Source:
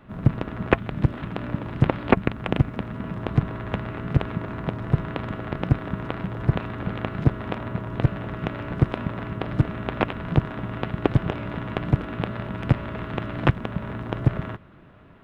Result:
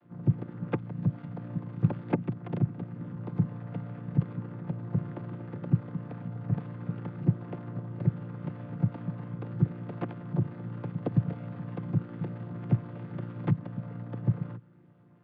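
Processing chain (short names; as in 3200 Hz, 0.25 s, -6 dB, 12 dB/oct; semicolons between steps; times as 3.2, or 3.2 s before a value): chord vocoder major triad, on A#2; gain -5 dB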